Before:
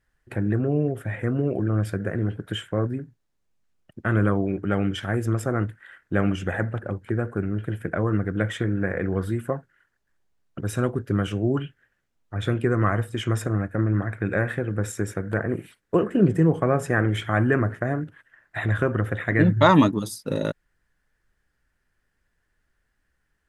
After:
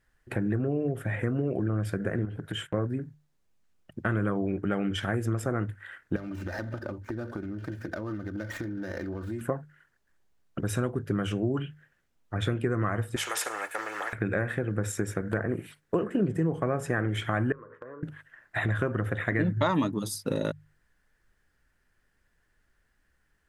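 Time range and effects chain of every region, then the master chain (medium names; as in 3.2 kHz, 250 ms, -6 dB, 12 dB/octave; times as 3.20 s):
2.25–2.74 s: gate -47 dBFS, range -14 dB + compression, threshold -30 dBFS
6.16–9.41 s: median filter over 15 samples + comb 3.3 ms, depth 59% + compression 10:1, threshold -32 dBFS
13.16–14.13 s: high-pass 640 Hz 24 dB/octave + comb 2.3 ms, depth 58% + spectrum-flattening compressor 2:1
17.52–18.03 s: two resonant band-passes 720 Hz, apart 1.1 oct + compression 4:1, threshold -42 dBFS
whole clip: hum notches 50/100/150 Hz; compression 3:1, threshold -28 dBFS; trim +2 dB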